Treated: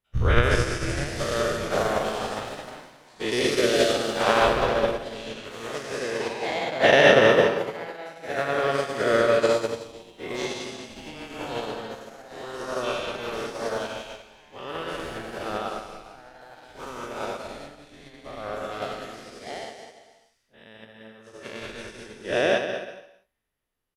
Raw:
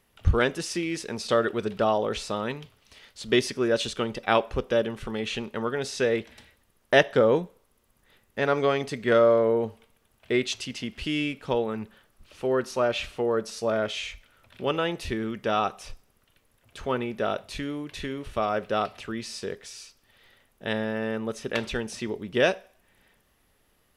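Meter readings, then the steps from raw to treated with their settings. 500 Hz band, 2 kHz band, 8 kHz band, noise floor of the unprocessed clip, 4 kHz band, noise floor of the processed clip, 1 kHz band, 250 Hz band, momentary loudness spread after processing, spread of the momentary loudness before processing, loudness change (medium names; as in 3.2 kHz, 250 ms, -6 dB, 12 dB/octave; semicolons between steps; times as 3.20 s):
+1.0 dB, +4.5 dB, +2.0 dB, -67 dBFS, +2.5 dB, -62 dBFS, +2.5 dB, -2.0 dB, 20 LU, 12 LU, +2.5 dB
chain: every event in the spectrogram widened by 240 ms; ever faster or slower copies 695 ms, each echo +3 st, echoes 3, each echo -6 dB; on a send: bouncing-ball echo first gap 200 ms, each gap 0.75×, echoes 5; on the sum: upward expansion 2.5:1, over -26 dBFS; trim -1 dB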